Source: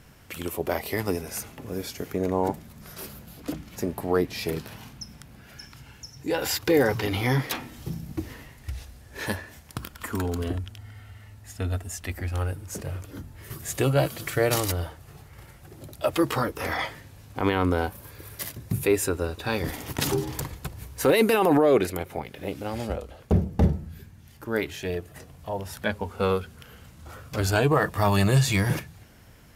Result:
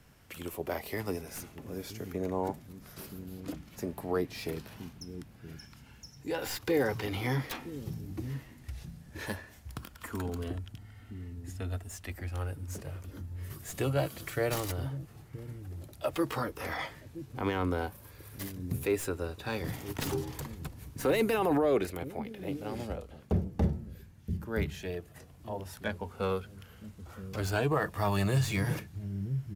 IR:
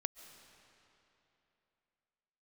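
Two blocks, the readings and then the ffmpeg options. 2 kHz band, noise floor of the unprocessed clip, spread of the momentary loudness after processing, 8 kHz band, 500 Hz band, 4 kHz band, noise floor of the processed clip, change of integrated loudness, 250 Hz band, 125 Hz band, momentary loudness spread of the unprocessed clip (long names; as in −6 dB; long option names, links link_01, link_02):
−7.5 dB, −50 dBFS, 17 LU, −9.5 dB, −7.5 dB, −9.0 dB, −54 dBFS, −8.0 dB, −7.0 dB, −6.5 dB, 20 LU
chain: -filter_complex "[0:a]acrossover=split=310|960|2700[link_01][link_02][link_03][link_04];[link_01]aecho=1:1:973:0.562[link_05];[link_04]aeval=exprs='clip(val(0),-1,0.015)':channel_layout=same[link_06];[link_05][link_02][link_03][link_06]amix=inputs=4:normalize=0,volume=-7.5dB"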